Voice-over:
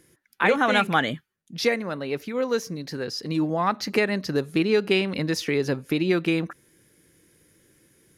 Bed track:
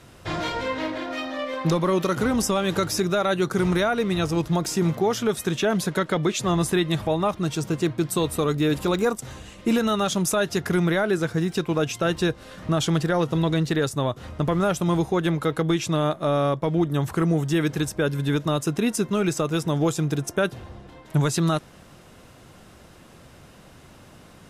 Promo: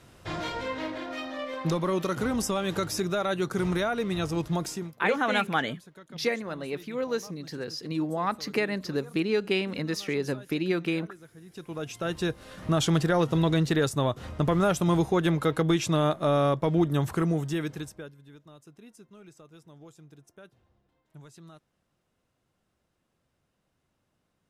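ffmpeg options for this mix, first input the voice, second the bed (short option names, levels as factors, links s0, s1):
-filter_complex "[0:a]adelay=4600,volume=0.562[s0];[1:a]volume=8.91,afade=t=out:st=4.63:d=0.29:silence=0.0944061,afade=t=in:st=11.44:d=1.39:silence=0.0595662,afade=t=out:st=16.9:d=1.25:silence=0.0473151[s1];[s0][s1]amix=inputs=2:normalize=0"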